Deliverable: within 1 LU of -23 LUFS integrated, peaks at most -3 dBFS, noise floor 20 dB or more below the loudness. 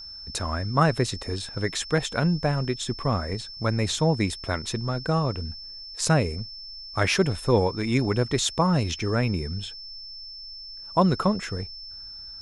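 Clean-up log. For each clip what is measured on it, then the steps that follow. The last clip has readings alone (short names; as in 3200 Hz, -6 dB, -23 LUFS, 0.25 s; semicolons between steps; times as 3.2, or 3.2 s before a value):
steady tone 5300 Hz; tone level -38 dBFS; loudness -25.5 LUFS; peak -7.0 dBFS; loudness target -23.0 LUFS
-> notch 5300 Hz, Q 30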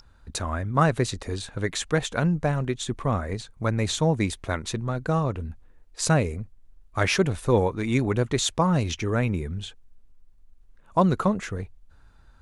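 steady tone none; loudness -26.0 LUFS; peak -7.0 dBFS; loudness target -23.0 LUFS
-> gain +3 dB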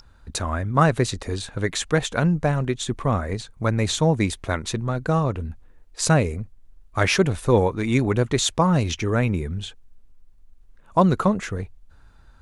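loudness -23.0 LUFS; peak -4.0 dBFS; noise floor -51 dBFS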